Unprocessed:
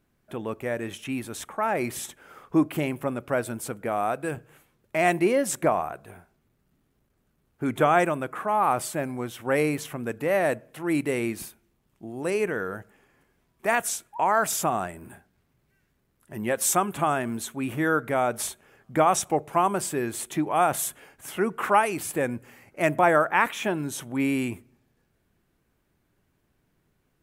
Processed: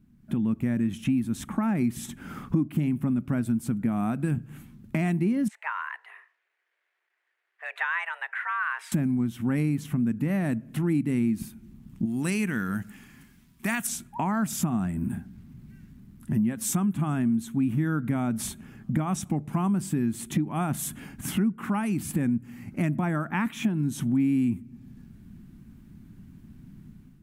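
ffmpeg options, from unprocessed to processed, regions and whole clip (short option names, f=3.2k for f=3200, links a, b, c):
-filter_complex "[0:a]asettb=1/sr,asplit=3[a][b][c];[a]atrim=end=5.484[d];[b]atrim=start=5.48:end=8.92,asetpts=PTS-STARTPTS,afade=t=in:d=0.004:c=qsin,afade=t=out:st=3.436:d=0.004:c=qsin,bandpass=f=1.6k:t=q:w=2.1,afreqshift=310[e];[c]atrim=start=8.916[f];[d][e]acrossfade=d=0.004:c1=hsin:c2=qsin[g];[g][f]acrossfade=d=0.004:c1=qsin:c2=hsin,asettb=1/sr,asplit=3[h][i][j];[h]atrim=end=12.054[k];[i]atrim=start=12.05:end=13.87,asetpts=PTS-STARTPTS,afade=t=in:d=0.004:c=qsin,afade=t=out:st=1.816:d=0.004:c=qsin,tiltshelf=f=1.1k:g=-8,acrusher=bits=9:mode=log:mix=0:aa=0.000001[l];[j]atrim=start=13.866[m];[k][l]acrossfade=d=0.004:c1=hsin:c2=qsin[n];[n][m]acrossfade=d=0.004:c1=qsin:c2=hsin,dynaudnorm=f=170:g=5:m=11.5dB,lowshelf=f=330:t=q:w=3:g=13.5,acompressor=threshold=-22dB:ratio=4,volume=-4dB"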